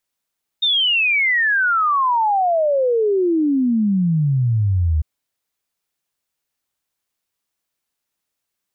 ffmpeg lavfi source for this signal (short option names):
-f lavfi -i "aevalsrc='0.2*clip(min(t,4.4-t)/0.01,0,1)*sin(2*PI*3700*4.4/log(74/3700)*(exp(log(74/3700)*t/4.4)-1))':d=4.4:s=44100"